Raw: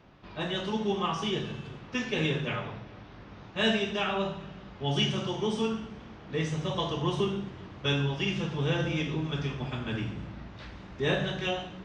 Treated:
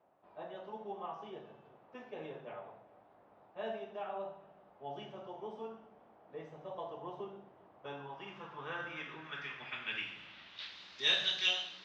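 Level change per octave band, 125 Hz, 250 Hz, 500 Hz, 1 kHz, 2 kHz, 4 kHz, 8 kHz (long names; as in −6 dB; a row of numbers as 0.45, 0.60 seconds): −26.0 dB, −21.5 dB, −12.5 dB, −9.0 dB, −7.0 dB, −4.0 dB, can't be measured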